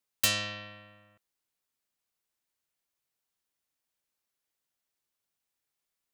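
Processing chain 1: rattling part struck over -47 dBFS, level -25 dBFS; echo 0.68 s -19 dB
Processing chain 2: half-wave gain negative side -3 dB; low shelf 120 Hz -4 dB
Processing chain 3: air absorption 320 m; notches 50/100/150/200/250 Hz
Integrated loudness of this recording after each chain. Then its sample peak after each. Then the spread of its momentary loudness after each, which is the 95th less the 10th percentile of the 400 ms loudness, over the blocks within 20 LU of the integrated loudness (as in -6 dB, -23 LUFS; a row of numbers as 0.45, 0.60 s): -29.5, -30.5, -37.5 LUFS; -12.0, -12.5, -21.5 dBFS; 19, 18, 17 LU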